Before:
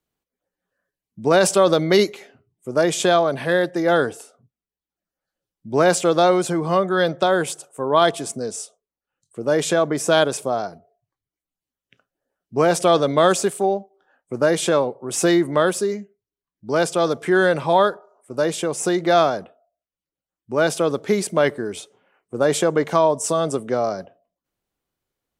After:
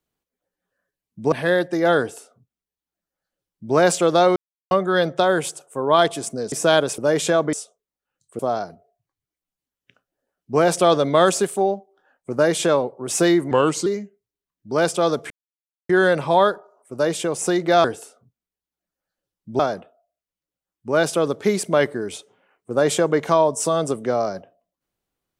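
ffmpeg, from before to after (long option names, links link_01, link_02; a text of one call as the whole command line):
ffmpeg -i in.wav -filter_complex "[0:a]asplit=13[link_01][link_02][link_03][link_04][link_05][link_06][link_07][link_08][link_09][link_10][link_11][link_12][link_13];[link_01]atrim=end=1.322[link_14];[link_02]atrim=start=3.348:end=6.39,asetpts=PTS-STARTPTS,afade=type=out:start_time=3.038:duration=0.004:curve=hsin[link_15];[link_03]atrim=start=6.39:end=6.74,asetpts=PTS-STARTPTS,volume=0[link_16];[link_04]atrim=start=6.74:end=8.552,asetpts=PTS-STARTPTS,afade=type=in:duration=0.004:curve=hsin[link_17];[link_05]atrim=start=9.958:end=10.422[link_18];[link_06]atrim=start=9.408:end=9.962[link_19];[link_07]atrim=start=8.548:end=9.412[link_20];[link_08]atrim=start=10.418:end=15.544[link_21];[link_09]atrim=start=15.54:end=15.84,asetpts=PTS-STARTPTS,asetrate=37485,aresample=44100[link_22];[link_10]atrim=start=15.836:end=17.28,asetpts=PTS-STARTPTS,afade=type=out:start_time=1.44:duration=0.004:curve=hsin,apad=pad_dur=0.59[link_23];[link_11]atrim=start=17.28:end=19.232,asetpts=PTS-STARTPTS,afade=type=in:duration=0.004:curve=hsin[link_24];[link_12]atrim=start=4.018:end=5.772[link_25];[link_13]atrim=start=19.228[link_26];[link_15][link_16][link_17]concat=n=3:v=0:a=1[link_27];[link_14][link_27]acrossfade=duration=0.004:curve1=hsin:curve2=hsin[link_28];[link_28][link_18]acrossfade=duration=0.004:curve1=hsin:curve2=hsin[link_29];[link_29][link_19]acrossfade=duration=0.004:curve1=hsin:curve2=hsin[link_30];[link_30][link_20]acrossfade=duration=0.004:curve1=hsin:curve2=hsin[link_31];[link_31][link_21]acrossfade=duration=0.004:curve1=hsin:curve2=hsin[link_32];[link_32][link_22]acrossfade=duration=0.004:curve1=hsin:curve2=hsin[link_33];[link_23][link_24]concat=n=2:v=0:a=1[link_34];[link_33][link_34]acrossfade=duration=0.004:curve1=hsin:curve2=hsin[link_35];[link_35][link_25]acrossfade=duration=0.004:curve1=hsin:curve2=hsin[link_36];[link_36][link_26]acrossfade=duration=0.004:curve1=hsin:curve2=hsin" out.wav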